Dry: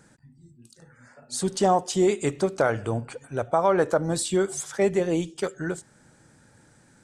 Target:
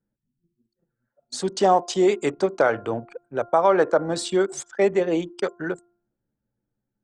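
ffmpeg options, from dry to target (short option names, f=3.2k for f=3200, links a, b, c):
-filter_complex "[0:a]anlmdn=3.98,acrossover=split=230 6900:gain=0.224 1 0.1[a][b][c];[a][b][c]amix=inputs=3:normalize=0,bandreject=f=348.8:t=h:w=4,bandreject=f=697.6:t=h:w=4,bandreject=f=1.0464k:t=h:w=4,bandreject=f=1.3952k:t=h:w=4,volume=3.5dB"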